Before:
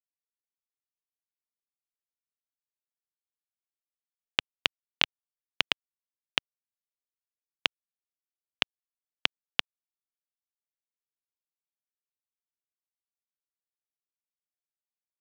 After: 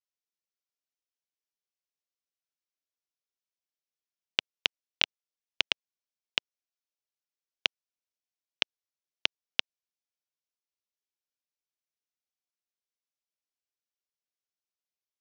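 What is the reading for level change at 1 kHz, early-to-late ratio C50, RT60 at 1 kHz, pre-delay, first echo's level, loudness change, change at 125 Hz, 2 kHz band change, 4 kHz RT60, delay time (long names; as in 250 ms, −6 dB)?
−6.0 dB, no reverb audible, no reverb audible, no reverb audible, no echo audible, −0.5 dB, below −10 dB, −1.5 dB, no reverb audible, no echo audible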